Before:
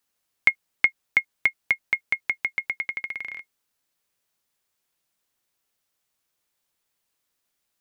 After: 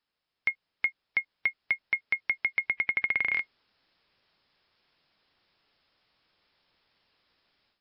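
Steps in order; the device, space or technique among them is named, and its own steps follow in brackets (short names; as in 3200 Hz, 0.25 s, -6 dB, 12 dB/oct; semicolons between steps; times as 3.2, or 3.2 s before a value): 2.69–3.32 air absorption 220 m; low-bitrate web radio (AGC gain up to 14 dB; limiter -12.5 dBFS, peak gain reduction 10.5 dB; gain -2.5 dB; MP3 48 kbps 12000 Hz)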